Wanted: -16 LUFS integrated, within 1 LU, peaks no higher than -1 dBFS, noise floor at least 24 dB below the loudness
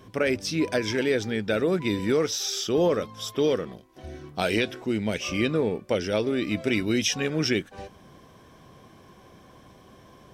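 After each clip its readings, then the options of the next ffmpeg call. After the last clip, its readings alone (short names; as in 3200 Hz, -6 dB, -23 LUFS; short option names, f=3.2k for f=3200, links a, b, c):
loudness -26.0 LUFS; peak -9.5 dBFS; loudness target -16.0 LUFS
-> -af "volume=10dB,alimiter=limit=-1dB:level=0:latency=1"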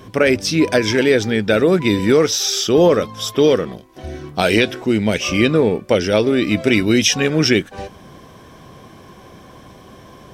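loudness -16.0 LUFS; peak -1.0 dBFS; noise floor -43 dBFS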